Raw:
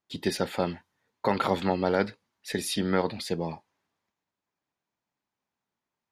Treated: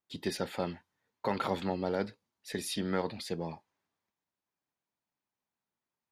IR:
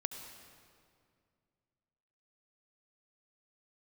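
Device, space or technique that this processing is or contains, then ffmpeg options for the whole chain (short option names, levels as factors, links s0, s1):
parallel distortion: -filter_complex "[0:a]asettb=1/sr,asplit=3[s0][s1][s2];[s0]atrim=end=1.644[s3];[s1]atrim=start=1.64:end=2.52,asetpts=PTS-STARTPTS,afade=t=in:d=0.004:c=qsin,afade=t=out:st=0.876:d=0.004:c=qsin,equalizer=f=1800:t=o:w=1.8:g=-4.5[s4];[s2]atrim=start=2.516[s5];[s3][s4]acrossfade=d=0.004:c1=hsin:c2=qsin[s6];[s6][s5]acrossfade=d=0.004:c1=qsin:c2=hsin,asplit=2[s7][s8];[s8]asoftclip=type=hard:threshold=0.0562,volume=0.251[s9];[s7][s9]amix=inputs=2:normalize=0,volume=0.422"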